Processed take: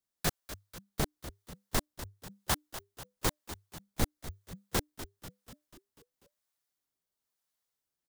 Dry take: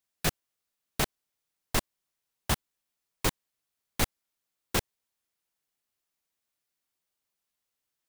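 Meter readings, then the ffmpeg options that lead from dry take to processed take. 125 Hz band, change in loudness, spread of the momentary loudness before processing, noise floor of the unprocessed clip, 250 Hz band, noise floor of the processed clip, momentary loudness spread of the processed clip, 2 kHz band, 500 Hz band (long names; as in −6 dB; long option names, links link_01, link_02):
−2.0 dB, −4.5 dB, 2 LU, −85 dBFS, −1.5 dB, below −85 dBFS, 17 LU, −4.5 dB, −2.0 dB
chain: -filter_complex "[0:a]acrossover=split=540[link_01][link_02];[link_01]aeval=exprs='val(0)*(1-0.5/2+0.5/2*cos(2*PI*1*n/s))':channel_layout=same[link_03];[link_02]aeval=exprs='val(0)*(1-0.5/2-0.5/2*cos(2*PI*1*n/s))':channel_layout=same[link_04];[link_03][link_04]amix=inputs=2:normalize=0,equalizer=frequency=2600:width_type=o:width=0.55:gain=-5,asplit=7[link_05][link_06][link_07][link_08][link_09][link_10][link_11];[link_06]adelay=245,afreqshift=-100,volume=-12.5dB[link_12];[link_07]adelay=490,afreqshift=-200,volume=-17.2dB[link_13];[link_08]adelay=735,afreqshift=-300,volume=-22dB[link_14];[link_09]adelay=980,afreqshift=-400,volume=-26.7dB[link_15];[link_10]adelay=1225,afreqshift=-500,volume=-31.4dB[link_16];[link_11]adelay=1470,afreqshift=-600,volume=-36.2dB[link_17];[link_05][link_12][link_13][link_14][link_15][link_16][link_17]amix=inputs=7:normalize=0"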